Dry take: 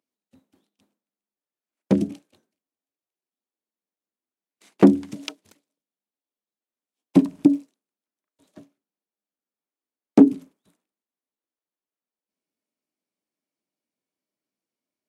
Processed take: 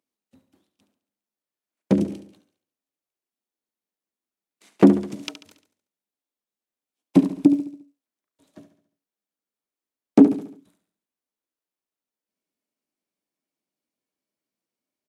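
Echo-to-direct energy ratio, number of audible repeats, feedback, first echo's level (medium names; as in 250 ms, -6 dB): -10.5 dB, 4, 47%, -11.5 dB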